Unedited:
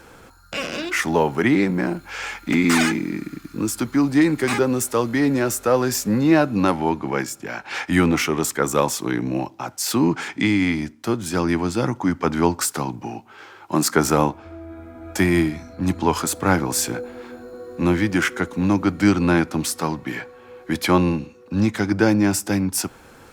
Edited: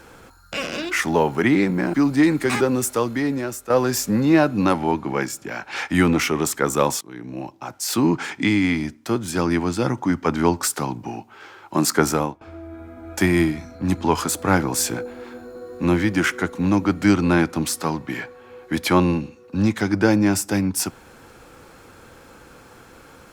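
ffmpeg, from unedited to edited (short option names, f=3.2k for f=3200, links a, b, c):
-filter_complex "[0:a]asplit=5[a][b][c][d][e];[a]atrim=end=1.942[f];[b]atrim=start=3.918:end=5.68,asetpts=PTS-STARTPTS,afade=t=out:st=0.942:d=0.82:silence=0.266073[g];[c]atrim=start=5.68:end=8.99,asetpts=PTS-STARTPTS,afade=t=in:d=0.004:c=hsin:silence=0.266073,afade=t=out:st=3.306:d=0.004:c=hsin:silence=0.0749894[h];[d]atrim=start=8.99:end=14.39,asetpts=PTS-STARTPTS,afade=t=in:d=0.98:silence=0.0749894,afade=t=out:st=5.02:d=0.38:silence=0.11885[i];[e]atrim=start=14.39,asetpts=PTS-STARTPTS,afade=t=in:d=0.004:c=hsin:silence=0.11885[j];[g][h][i][j]concat=n=4:v=0:a=1[k];[f][k]acrossfade=d=0.004:c1=hsin:c2=hsin"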